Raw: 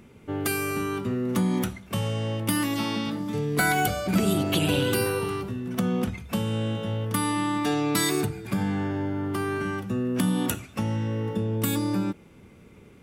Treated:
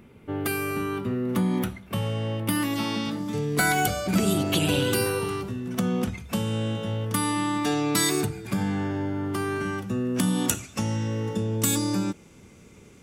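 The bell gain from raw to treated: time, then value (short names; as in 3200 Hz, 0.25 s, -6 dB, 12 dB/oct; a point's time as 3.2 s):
bell 6700 Hz 1.1 oct
2.43 s -6.5 dB
3.05 s +4.5 dB
9.98 s +4.5 dB
10.64 s +13 dB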